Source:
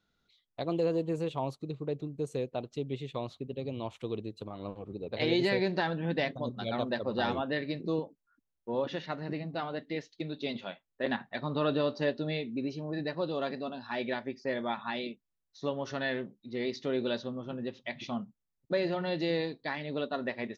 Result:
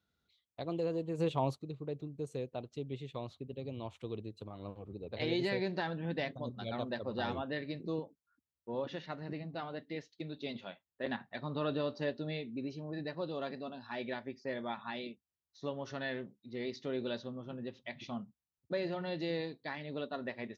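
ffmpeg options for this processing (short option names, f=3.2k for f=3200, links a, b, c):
-filter_complex "[0:a]asplit=3[a][b][c];[a]afade=t=out:st=1.18:d=0.02[d];[b]acontrast=78,afade=t=in:st=1.18:d=0.02,afade=t=out:st=1.58:d=0.02[e];[c]afade=t=in:st=1.58:d=0.02[f];[d][e][f]amix=inputs=3:normalize=0,highpass=58,equalizer=f=77:w=1.5:g=8.5,volume=-6dB"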